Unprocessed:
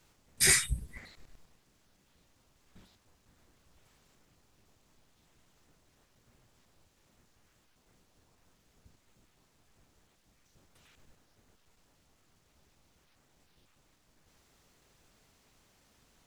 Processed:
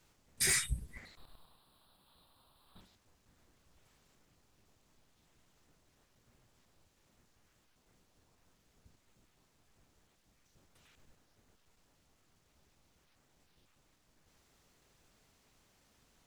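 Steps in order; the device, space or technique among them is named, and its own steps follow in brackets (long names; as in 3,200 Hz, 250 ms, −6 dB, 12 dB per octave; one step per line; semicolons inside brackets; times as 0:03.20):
0:01.17–0:02.81: drawn EQ curve 420 Hz 0 dB, 1,100 Hz +11 dB, 2,100 Hz −6 dB, 4,000 Hz +13 dB, 6,300 Hz −20 dB, 9,200 Hz +7 dB
limiter into clipper (brickwall limiter −15.5 dBFS, peak gain reduction 4.5 dB; hard clipping −20 dBFS, distortion −20 dB)
level −3 dB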